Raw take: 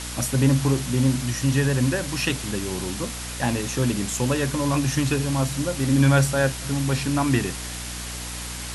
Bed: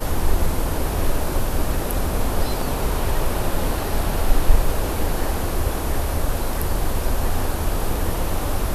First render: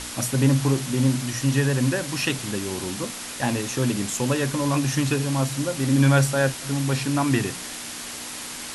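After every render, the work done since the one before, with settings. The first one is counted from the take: notches 60/120/180 Hz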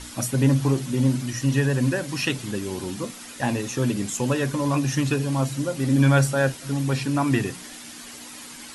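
denoiser 9 dB, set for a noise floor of -35 dBFS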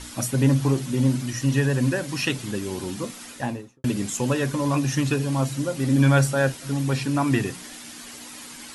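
3.25–3.84 studio fade out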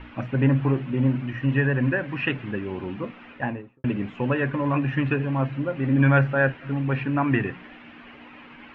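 Chebyshev low-pass 2700 Hz, order 4; dynamic EQ 1700 Hz, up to +6 dB, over -46 dBFS, Q 3.4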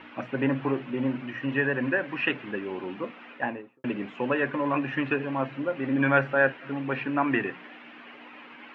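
HPF 290 Hz 12 dB/oct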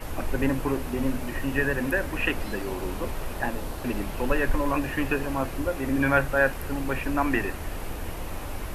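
add bed -11.5 dB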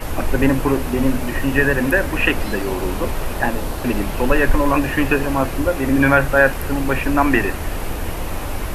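gain +9 dB; limiter -1 dBFS, peak gain reduction 2.5 dB

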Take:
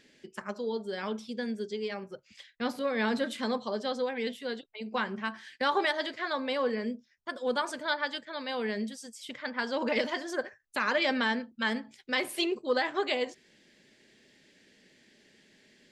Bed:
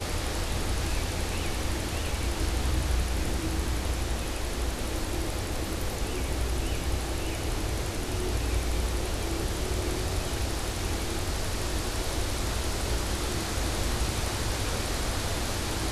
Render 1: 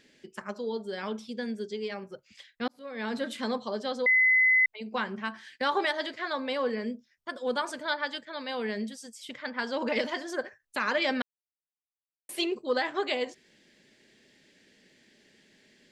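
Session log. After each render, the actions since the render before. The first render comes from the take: 2.68–3.34 fade in; 4.06–4.66 bleep 2030 Hz -18.5 dBFS; 11.22–12.29 mute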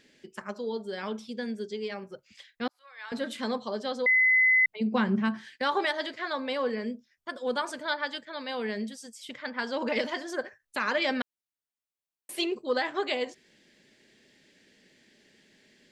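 2.69–3.12 ladder high-pass 840 Hz, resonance 25%; 4.33–5.5 bell 170 Hz +14 dB 2.2 oct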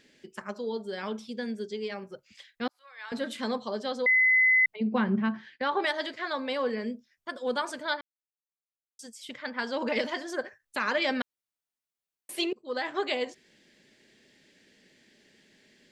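4.76–5.84 air absorption 200 m; 8.01–8.99 mute; 12.53–12.94 fade in, from -23.5 dB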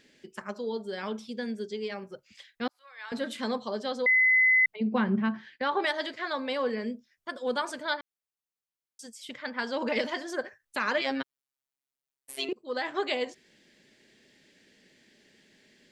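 11.01–12.49 robotiser 135 Hz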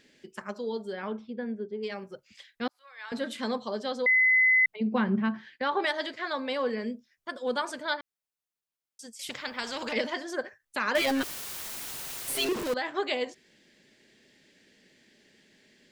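0.92–1.82 LPF 2500 Hz -> 1100 Hz; 9.19–9.93 spectral compressor 2:1; 10.95–12.74 zero-crossing step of -27.5 dBFS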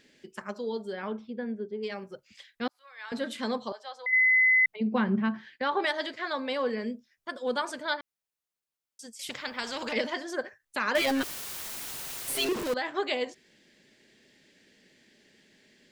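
3.72–4.13 ladder high-pass 660 Hz, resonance 40%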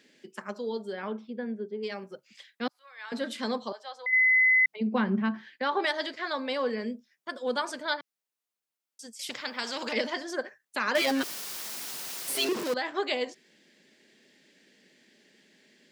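HPF 160 Hz 24 dB/oct; dynamic EQ 5100 Hz, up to +4 dB, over -51 dBFS, Q 2.4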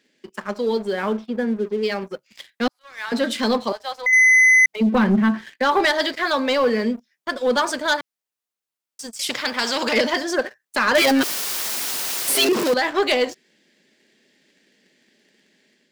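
sample leveller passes 2; AGC gain up to 4.5 dB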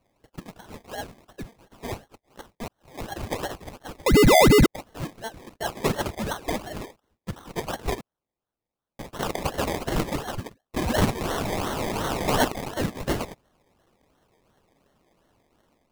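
rippled Chebyshev high-pass 1600 Hz, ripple 3 dB; decimation with a swept rate 25×, swing 60% 2.8 Hz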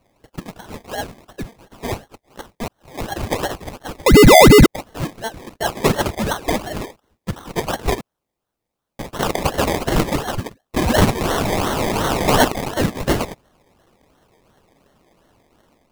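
gain +8 dB; limiter -3 dBFS, peak gain reduction 2.5 dB

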